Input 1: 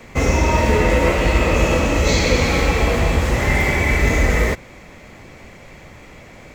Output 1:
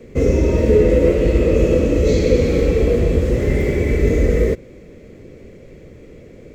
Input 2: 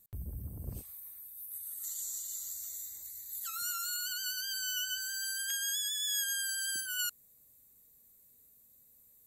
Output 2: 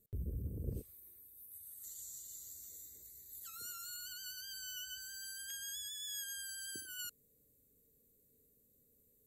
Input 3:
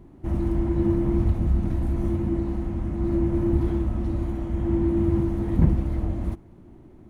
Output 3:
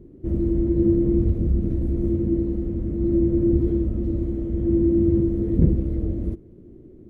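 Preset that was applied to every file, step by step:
low shelf with overshoot 620 Hz +10.5 dB, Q 3
level −10 dB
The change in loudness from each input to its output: +1.0, −9.5, +2.5 LU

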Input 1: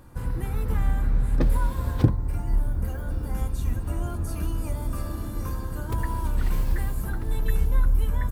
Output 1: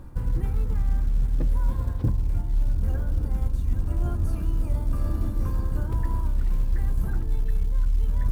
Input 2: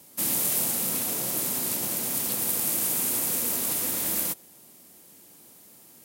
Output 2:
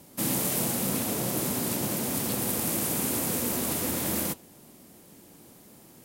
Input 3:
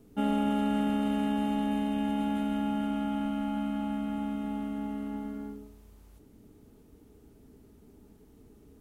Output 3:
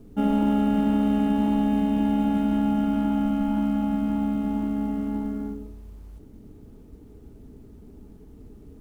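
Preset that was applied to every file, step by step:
spectral tilt −2 dB per octave
reversed playback
downward compressor 6 to 1, threshold −21 dBFS
reversed playback
log-companded quantiser 8 bits
flanger 1.9 Hz, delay 2.8 ms, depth 5.3 ms, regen −86%
normalise the peak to −12 dBFS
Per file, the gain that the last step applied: +5.5, +7.5, +8.5 decibels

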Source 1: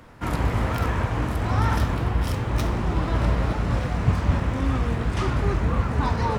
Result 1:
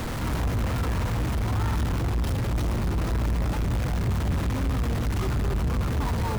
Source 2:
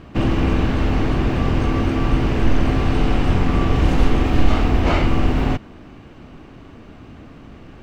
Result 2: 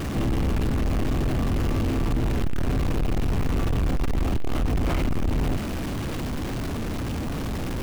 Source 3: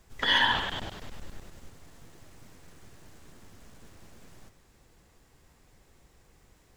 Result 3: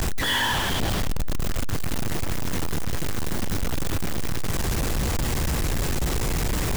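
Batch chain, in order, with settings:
converter with a step at zero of −16.5 dBFS
low-shelf EQ 310 Hz +8 dB
soft clipping −8 dBFS
loudness normalisation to −27 LKFS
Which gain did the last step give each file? −12.0, −11.5, −5.5 decibels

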